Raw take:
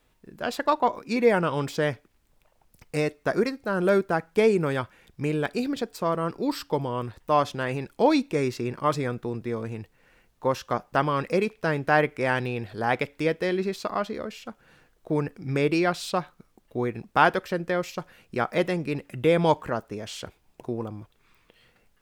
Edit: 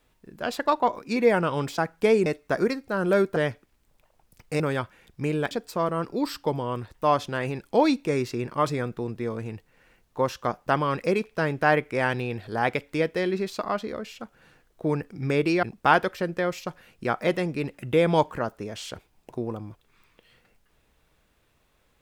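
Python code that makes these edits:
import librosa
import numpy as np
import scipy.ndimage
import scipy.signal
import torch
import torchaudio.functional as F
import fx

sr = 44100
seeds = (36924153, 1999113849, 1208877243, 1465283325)

y = fx.edit(x, sr, fx.swap(start_s=1.78, length_s=1.24, other_s=4.12, other_length_s=0.48),
    fx.cut(start_s=5.51, length_s=0.26),
    fx.cut(start_s=15.89, length_s=1.05), tone=tone)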